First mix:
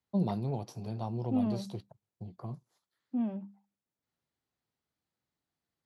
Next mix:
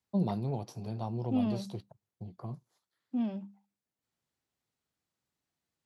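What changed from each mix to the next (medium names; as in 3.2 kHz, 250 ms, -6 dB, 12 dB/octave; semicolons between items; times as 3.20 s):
second voice: remove low-pass 1.9 kHz 12 dB/octave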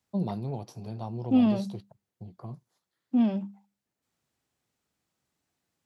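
second voice +8.5 dB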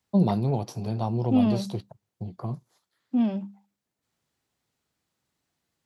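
first voice +8.5 dB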